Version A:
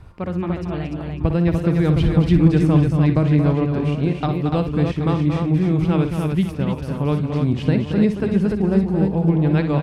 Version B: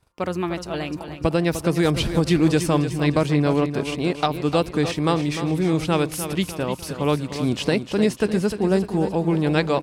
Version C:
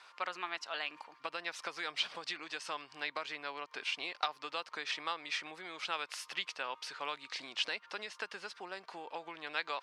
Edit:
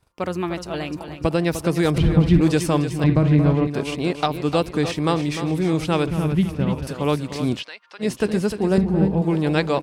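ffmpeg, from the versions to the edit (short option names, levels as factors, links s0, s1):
-filter_complex "[0:a]asplit=4[s0][s1][s2][s3];[1:a]asplit=6[s4][s5][s6][s7][s8][s9];[s4]atrim=end=1.982[s10];[s0]atrim=start=1.978:end=2.412[s11];[s5]atrim=start=2.408:end=3.042[s12];[s1]atrim=start=3.038:end=3.672[s13];[s6]atrim=start=3.668:end=6.072[s14];[s2]atrim=start=6.068:end=6.872[s15];[s7]atrim=start=6.868:end=7.64[s16];[2:a]atrim=start=7.54:end=8.09[s17];[s8]atrim=start=7.99:end=8.782[s18];[s3]atrim=start=8.778:end=9.222[s19];[s9]atrim=start=9.218[s20];[s10][s11]acrossfade=d=0.004:c1=hsin:c2=hsin[s21];[s21][s12]acrossfade=d=0.004:c1=hsin:c2=hsin[s22];[s22][s13]acrossfade=d=0.004:c1=hsin:c2=hsin[s23];[s23][s14]acrossfade=d=0.004:c1=hsin:c2=hsin[s24];[s24][s15]acrossfade=d=0.004:c1=hsin:c2=hsin[s25];[s25][s16]acrossfade=d=0.004:c1=hsin:c2=hsin[s26];[s26][s17]acrossfade=d=0.1:c1=tri:c2=tri[s27];[s27][s18]acrossfade=d=0.1:c1=tri:c2=tri[s28];[s28][s19]acrossfade=d=0.004:c1=hsin:c2=hsin[s29];[s29][s20]acrossfade=d=0.004:c1=hsin:c2=hsin"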